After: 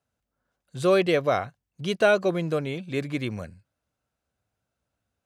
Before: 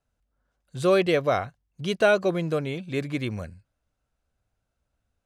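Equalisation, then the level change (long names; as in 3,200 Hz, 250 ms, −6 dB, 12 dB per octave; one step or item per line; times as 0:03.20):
high-pass filter 94 Hz 12 dB per octave
0.0 dB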